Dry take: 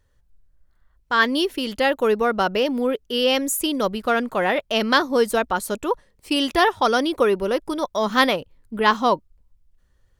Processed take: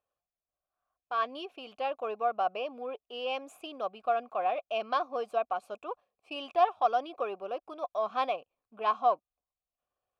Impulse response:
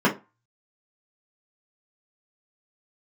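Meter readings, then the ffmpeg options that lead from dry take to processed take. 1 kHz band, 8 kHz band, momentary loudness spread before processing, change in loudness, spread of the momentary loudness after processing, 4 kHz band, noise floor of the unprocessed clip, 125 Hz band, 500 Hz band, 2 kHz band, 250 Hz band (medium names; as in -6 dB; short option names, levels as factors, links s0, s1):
-7.0 dB, under -30 dB, 7 LU, -11.5 dB, 13 LU, -18.5 dB, -63 dBFS, under -25 dB, -12.0 dB, -19.5 dB, -24.0 dB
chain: -filter_complex "[0:a]aeval=exprs='if(lt(val(0),0),0.708*val(0),val(0))':c=same,asplit=3[s0][s1][s2];[s0]bandpass=f=730:t=q:w=8,volume=1[s3];[s1]bandpass=f=1090:t=q:w=8,volume=0.501[s4];[s2]bandpass=f=2440:t=q:w=8,volume=0.355[s5];[s3][s4][s5]amix=inputs=3:normalize=0"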